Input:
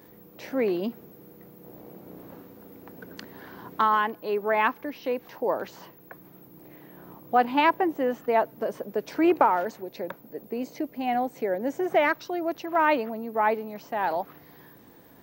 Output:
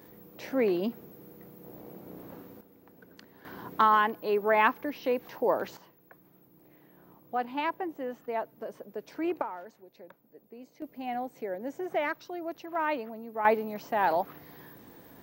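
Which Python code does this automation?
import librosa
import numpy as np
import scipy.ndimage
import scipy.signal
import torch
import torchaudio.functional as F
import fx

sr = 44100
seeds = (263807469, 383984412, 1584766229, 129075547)

y = fx.gain(x, sr, db=fx.steps((0.0, -1.0), (2.61, -11.0), (3.45, 0.0), (5.77, -10.0), (9.42, -16.5), (10.82, -8.0), (13.45, 1.0)))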